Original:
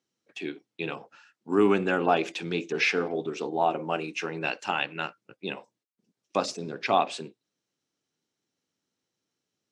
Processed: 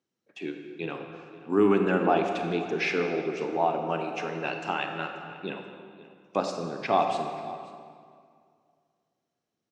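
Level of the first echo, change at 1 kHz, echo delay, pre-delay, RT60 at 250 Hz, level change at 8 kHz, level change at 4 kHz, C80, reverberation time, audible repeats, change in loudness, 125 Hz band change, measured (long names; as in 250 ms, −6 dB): −19.0 dB, +0.5 dB, 534 ms, 28 ms, 2.3 s, −6.5 dB, −4.5 dB, 6.0 dB, 2.2 s, 1, 0.0 dB, +2.0 dB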